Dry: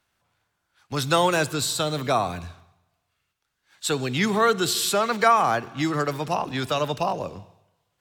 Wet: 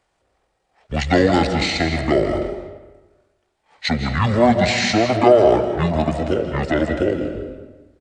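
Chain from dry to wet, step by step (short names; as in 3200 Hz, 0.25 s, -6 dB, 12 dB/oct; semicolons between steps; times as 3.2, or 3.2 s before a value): bell 1100 Hz +3 dB 0.58 oct; pitch shift -11 st; digital reverb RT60 1.2 s, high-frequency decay 0.6×, pre-delay 0.115 s, DRR 6.5 dB; gain +4.5 dB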